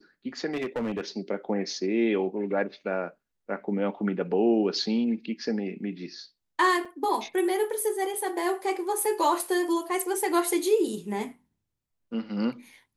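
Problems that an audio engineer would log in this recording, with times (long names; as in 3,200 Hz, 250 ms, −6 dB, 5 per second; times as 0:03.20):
0:00.53–0:01.01: clipping −25.5 dBFS
0:06.85: drop-out 4.7 ms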